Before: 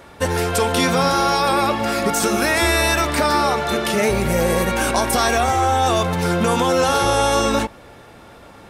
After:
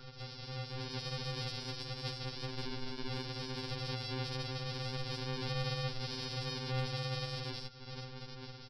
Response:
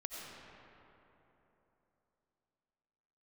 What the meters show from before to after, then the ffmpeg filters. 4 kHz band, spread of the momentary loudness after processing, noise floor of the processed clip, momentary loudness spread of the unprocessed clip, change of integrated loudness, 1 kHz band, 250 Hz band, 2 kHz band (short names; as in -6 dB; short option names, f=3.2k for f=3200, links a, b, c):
-15.0 dB, 9 LU, -50 dBFS, 3 LU, -22.0 dB, -29.0 dB, -23.5 dB, -24.0 dB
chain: -af "aresample=11025,acrusher=samples=34:mix=1:aa=0.000001,aresample=44100,equalizer=f=1.1k:w=0.42:g=-5,acompressor=threshold=-33dB:ratio=6,alimiter=level_in=9.5dB:limit=-24dB:level=0:latency=1:release=26,volume=-9.5dB,dynaudnorm=f=150:g=11:m=6dB,bass=f=250:g=-8,treble=f=4k:g=14,aeval=exprs='val(0)+0.002*sin(2*PI*1400*n/s)':c=same,aeval=exprs='0.0841*(cos(1*acos(clip(val(0)/0.0841,-1,1)))-cos(1*PI/2))+0.00596*(cos(3*acos(clip(val(0)/0.0841,-1,1)))-cos(3*PI/2))':c=same,afftfilt=real='re*2.45*eq(mod(b,6),0)':imag='im*2.45*eq(mod(b,6),0)':win_size=2048:overlap=0.75,volume=4dB"